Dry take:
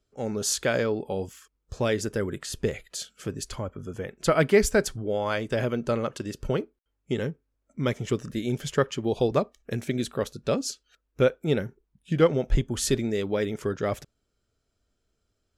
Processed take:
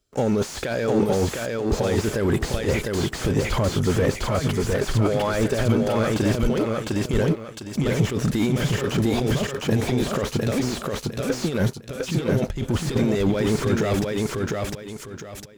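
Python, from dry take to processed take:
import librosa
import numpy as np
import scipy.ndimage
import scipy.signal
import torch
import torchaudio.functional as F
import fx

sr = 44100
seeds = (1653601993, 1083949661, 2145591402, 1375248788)

y = fx.high_shelf(x, sr, hz=4100.0, db=8.0)
y = fx.over_compress(y, sr, threshold_db=-33.0, ratio=-1.0)
y = fx.leveller(y, sr, passes=3)
y = fx.echo_feedback(y, sr, ms=705, feedback_pct=28, wet_db=-3.0)
y = fx.slew_limit(y, sr, full_power_hz=110.0)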